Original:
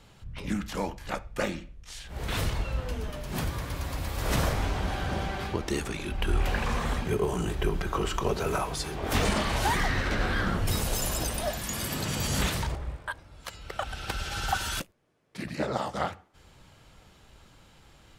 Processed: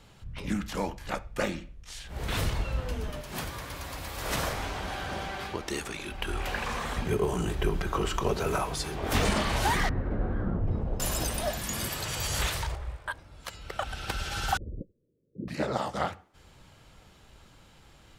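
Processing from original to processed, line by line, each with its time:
3.21–6.97 low shelf 340 Hz -9 dB
9.89–11 Bessel low-pass 520 Hz
11.89–13.06 bell 220 Hz -14.5 dB 1.2 oct
14.57–15.48 steep low-pass 530 Hz 72 dB/oct

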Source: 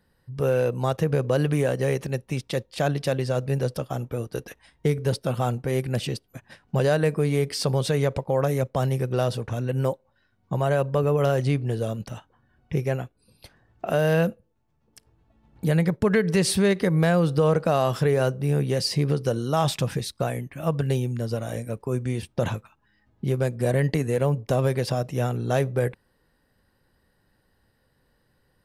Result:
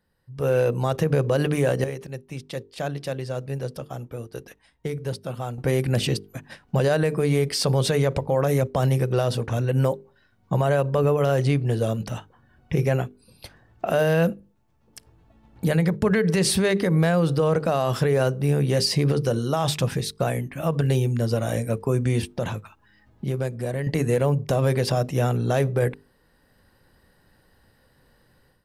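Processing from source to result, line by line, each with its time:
1.84–5.58 gain -12 dB
22.29–23.87 compressor 1.5:1, threshold -44 dBFS
whole clip: notches 50/100/150/200/250/300/350/400/450 Hz; AGC gain up to 13 dB; limiter -7 dBFS; gain -5.5 dB

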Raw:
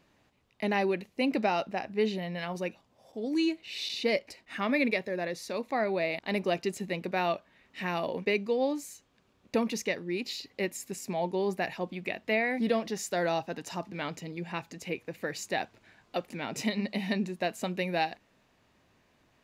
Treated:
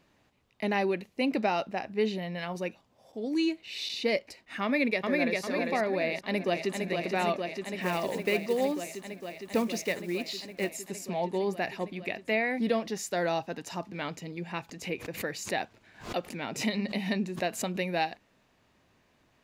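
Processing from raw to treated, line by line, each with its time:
4.63–5.4 echo throw 0.4 s, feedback 50%, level -1.5 dB
6.08–6.83 echo throw 0.46 s, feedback 85%, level -4.5 dB
7.81–10.72 block floating point 5-bit
14.69–17.81 backwards sustainer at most 130 dB/s

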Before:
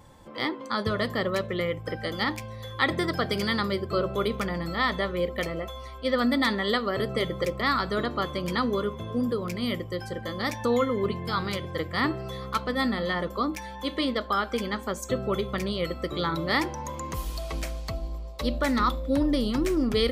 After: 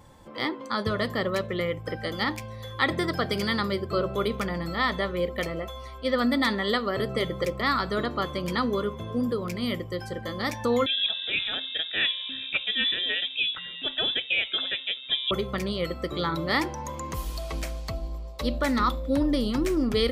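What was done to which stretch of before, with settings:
10.86–15.31 inverted band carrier 3700 Hz

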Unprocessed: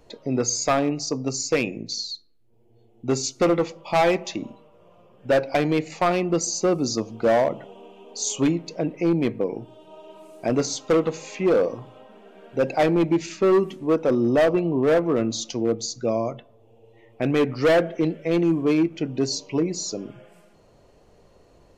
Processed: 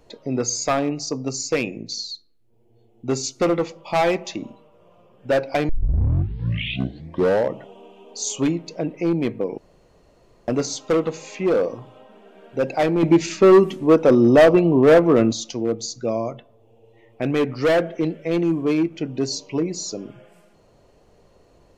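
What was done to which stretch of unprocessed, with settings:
5.69 tape start 1.94 s
9.58–10.48 room tone
13.03–15.33 gain +6.5 dB

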